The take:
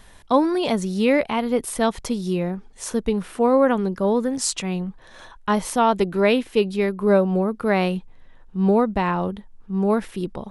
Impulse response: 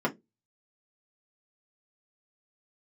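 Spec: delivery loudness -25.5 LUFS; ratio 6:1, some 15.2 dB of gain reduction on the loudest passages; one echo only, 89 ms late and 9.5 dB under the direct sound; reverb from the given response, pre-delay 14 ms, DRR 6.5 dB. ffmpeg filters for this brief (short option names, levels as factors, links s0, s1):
-filter_complex "[0:a]acompressor=threshold=0.0316:ratio=6,aecho=1:1:89:0.335,asplit=2[s0][s1];[1:a]atrim=start_sample=2205,adelay=14[s2];[s1][s2]afir=irnorm=-1:irlink=0,volume=0.15[s3];[s0][s3]amix=inputs=2:normalize=0,volume=1.88"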